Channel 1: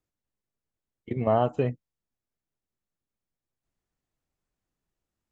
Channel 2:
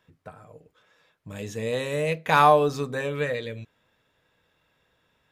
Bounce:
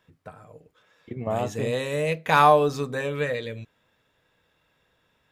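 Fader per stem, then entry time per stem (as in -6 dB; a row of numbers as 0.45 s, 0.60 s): -4.5 dB, +0.5 dB; 0.00 s, 0.00 s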